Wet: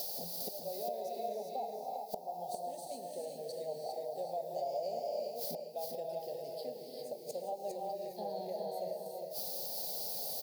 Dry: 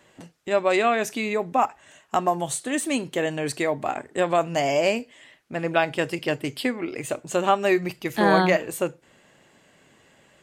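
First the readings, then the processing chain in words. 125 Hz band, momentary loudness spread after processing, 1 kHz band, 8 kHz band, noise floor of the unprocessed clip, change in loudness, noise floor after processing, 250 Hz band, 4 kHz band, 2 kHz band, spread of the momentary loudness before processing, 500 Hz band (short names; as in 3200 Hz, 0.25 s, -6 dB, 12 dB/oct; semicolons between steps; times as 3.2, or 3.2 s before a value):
-23.5 dB, 6 LU, -16.0 dB, -12.5 dB, -58 dBFS, -15.5 dB, -48 dBFS, -25.5 dB, -12.5 dB, under -35 dB, 9 LU, -14.0 dB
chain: HPF 93 Hz 12 dB/oct; non-linear reverb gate 0.4 s rising, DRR 1.5 dB; in parallel at -5.5 dB: requantised 6-bit, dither triangular; on the sum: flipped gate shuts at -18 dBFS, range -29 dB; compressor 12:1, threshold -44 dBFS, peak gain reduction 18 dB; tone controls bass -8 dB, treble +11 dB; fixed phaser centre 310 Hz, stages 6; on a send: feedback echo 0.404 s, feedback 21%, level -5 dB; on the sum: overloaded stage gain 31 dB; EQ curve 290 Hz 0 dB, 810 Hz +8 dB, 1300 Hz -23 dB, 2900 Hz -19 dB, 4600 Hz 0 dB, 7400 Hz -20 dB, 12000 Hz -8 dB; gain +7 dB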